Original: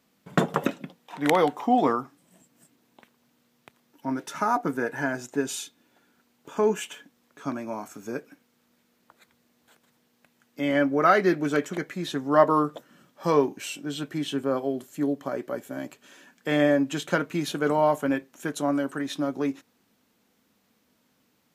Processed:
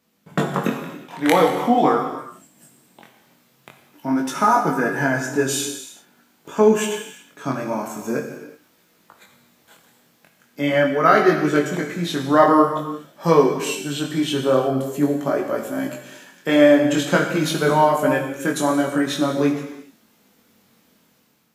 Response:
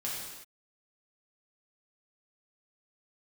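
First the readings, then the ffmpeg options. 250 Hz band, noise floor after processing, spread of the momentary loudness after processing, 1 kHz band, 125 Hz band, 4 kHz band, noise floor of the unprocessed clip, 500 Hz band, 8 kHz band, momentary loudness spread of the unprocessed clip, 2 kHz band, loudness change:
+6.5 dB, -60 dBFS, 15 LU, +6.5 dB, +8.0 dB, +8.0 dB, -69 dBFS, +7.0 dB, +9.5 dB, 15 LU, +7.0 dB, +7.0 dB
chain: -filter_complex "[0:a]asplit=2[s0][s1];[1:a]atrim=start_sample=2205,highshelf=f=10000:g=7.5[s2];[s1][s2]afir=irnorm=-1:irlink=0,volume=0.631[s3];[s0][s3]amix=inputs=2:normalize=0,flanger=delay=18.5:depth=5.4:speed=0.45,dynaudnorm=f=290:g=5:m=2.51"

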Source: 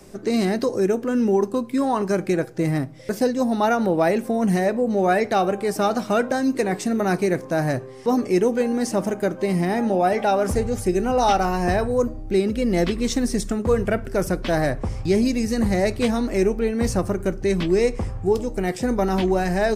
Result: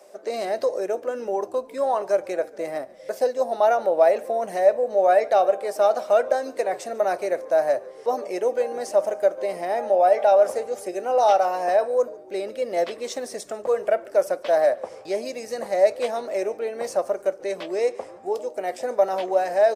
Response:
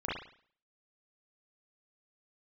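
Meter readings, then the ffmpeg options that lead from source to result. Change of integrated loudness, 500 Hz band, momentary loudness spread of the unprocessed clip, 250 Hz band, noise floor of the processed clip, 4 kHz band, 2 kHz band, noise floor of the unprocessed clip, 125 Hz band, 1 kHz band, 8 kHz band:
-1.5 dB, +1.5 dB, 4 LU, -17.0 dB, -44 dBFS, -6.5 dB, -5.5 dB, -37 dBFS, under -25 dB, +0.5 dB, -6.5 dB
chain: -filter_complex "[0:a]highpass=f=590:t=q:w=4.9,asplit=4[s0][s1][s2][s3];[s1]adelay=144,afreqshift=-64,volume=0.0708[s4];[s2]adelay=288,afreqshift=-128,volume=0.0363[s5];[s3]adelay=432,afreqshift=-192,volume=0.0184[s6];[s0][s4][s5][s6]amix=inputs=4:normalize=0,volume=0.473"

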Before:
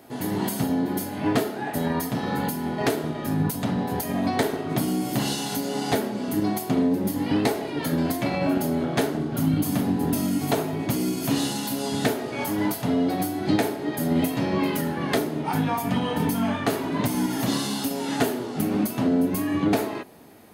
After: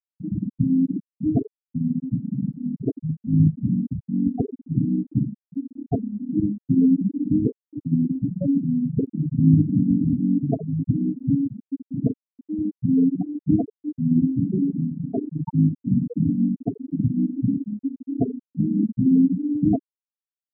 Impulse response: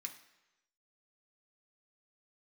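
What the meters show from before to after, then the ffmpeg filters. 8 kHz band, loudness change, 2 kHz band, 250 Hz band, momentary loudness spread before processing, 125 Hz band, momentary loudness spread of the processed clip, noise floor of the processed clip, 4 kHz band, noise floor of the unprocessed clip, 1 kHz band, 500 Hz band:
under -40 dB, +2.0 dB, under -40 dB, +3.5 dB, 4 LU, +6.0 dB, 9 LU, under -85 dBFS, under -40 dB, -33 dBFS, under -15 dB, -8.5 dB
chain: -af "bass=f=250:g=8,treble=f=4000:g=7,aecho=1:1:26|57:0.15|0.251,afftfilt=real='re*gte(hypot(re,im),0.562)':imag='im*gte(hypot(re,im),0.562)':win_size=1024:overlap=0.75"

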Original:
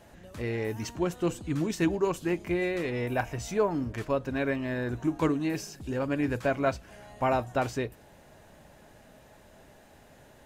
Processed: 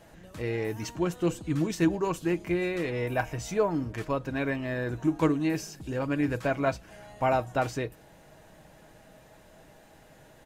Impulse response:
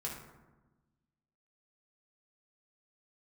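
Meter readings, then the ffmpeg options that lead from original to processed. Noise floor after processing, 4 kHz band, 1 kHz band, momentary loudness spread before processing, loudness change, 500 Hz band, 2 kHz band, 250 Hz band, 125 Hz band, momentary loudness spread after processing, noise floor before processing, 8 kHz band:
-55 dBFS, +0.5 dB, +1.0 dB, 7 LU, +0.5 dB, 0.0 dB, +0.5 dB, +1.0 dB, +1.5 dB, 8 LU, -56 dBFS, +0.5 dB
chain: -af "aecho=1:1:6.3:0.33"

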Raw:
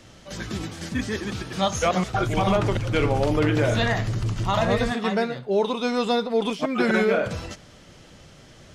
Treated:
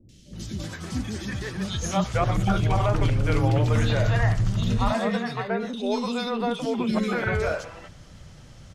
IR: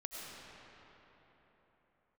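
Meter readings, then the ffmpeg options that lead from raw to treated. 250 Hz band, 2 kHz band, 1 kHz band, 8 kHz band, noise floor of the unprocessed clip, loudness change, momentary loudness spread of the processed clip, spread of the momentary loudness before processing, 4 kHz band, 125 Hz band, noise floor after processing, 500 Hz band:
-1.5 dB, -3.0 dB, -2.5 dB, -1.5 dB, -49 dBFS, -1.5 dB, 11 LU, 11 LU, -3.5 dB, +3.0 dB, -48 dBFS, -4.5 dB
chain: -filter_complex "[0:a]acrossover=split=370|2700[s0][s1][s2];[s2]adelay=90[s3];[s1]adelay=330[s4];[s0][s4][s3]amix=inputs=3:normalize=0,asplit=2[s5][s6];[s6]asubboost=boost=6.5:cutoff=210[s7];[1:a]atrim=start_sample=2205,atrim=end_sample=3087[s8];[s7][s8]afir=irnorm=-1:irlink=0,volume=0.794[s9];[s5][s9]amix=inputs=2:normalize=0,volume=0.596"

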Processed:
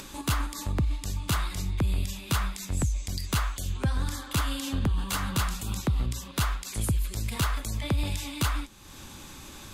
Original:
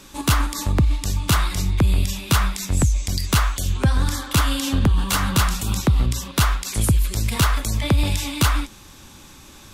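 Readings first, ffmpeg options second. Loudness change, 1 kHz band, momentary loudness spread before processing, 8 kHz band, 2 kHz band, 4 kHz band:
-9.0 dB, -9.0 dB, 3 LU, -9.0 dB, -9.0 dB, -9.0 dB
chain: -af "bandreject=f=5600:w=22,acompressor=mode=upward:threshold=0.0562:ratio=2.5,volume=0.355"

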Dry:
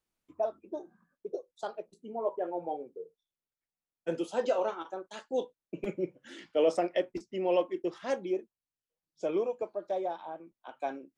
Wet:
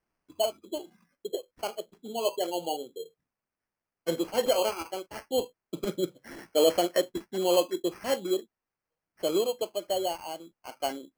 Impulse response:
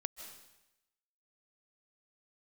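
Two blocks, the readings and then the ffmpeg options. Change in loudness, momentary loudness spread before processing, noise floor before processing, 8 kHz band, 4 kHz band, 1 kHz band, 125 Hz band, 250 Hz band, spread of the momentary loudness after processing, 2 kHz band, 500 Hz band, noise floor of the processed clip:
+4.0 dB, 14 LU, under -85 dBFS, no reading, +14.5 dB, +3.0 dB, +3.5 dB, +3.5 dB, 14 LU, +3.5 dB, +3.0 dB, under -85 dBFS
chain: -af "acrusher=samples=12:mix=1:aa=0.000001,volume=1.5"

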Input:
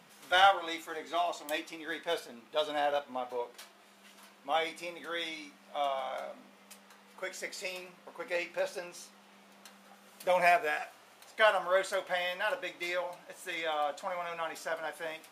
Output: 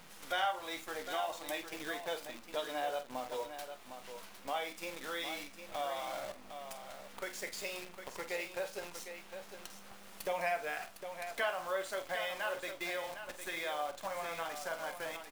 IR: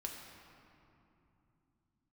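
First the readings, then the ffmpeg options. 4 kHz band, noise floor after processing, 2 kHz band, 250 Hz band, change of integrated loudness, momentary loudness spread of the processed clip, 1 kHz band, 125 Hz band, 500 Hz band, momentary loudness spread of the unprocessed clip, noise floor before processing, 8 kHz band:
-5.5 dB, -53 dBFS, -5.5 dB, -3.0 dB, -6.5 dB, 12 LU, -7.0 dB, -2.0 dB, -6.0 dB, 18 LU, -59 dBFS, +0.5 dB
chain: -af "acrusher=bits=8:dc=4:mix=0:aa=0.000001,acompressor=threshold=0.00251:ratio=2,aecho=1:1:47|757:0.251|0.355,volume=2.11"

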